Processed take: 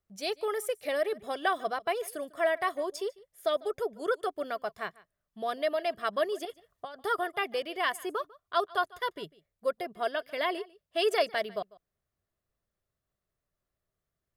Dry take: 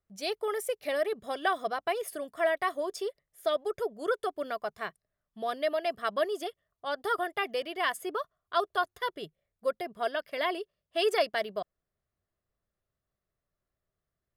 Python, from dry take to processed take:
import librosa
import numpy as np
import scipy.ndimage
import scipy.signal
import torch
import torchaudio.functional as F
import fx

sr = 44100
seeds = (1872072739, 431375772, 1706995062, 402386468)

y = fx.over_compress(x, sr, threshold_db=-41.0, ratio=-1.0, at=(6.45, 6.96))
y = y + 10.0 ** (-22.0 / 20.0) * np.pad(y, (int(148 * sr / 1000.0), 0))[:len(y)]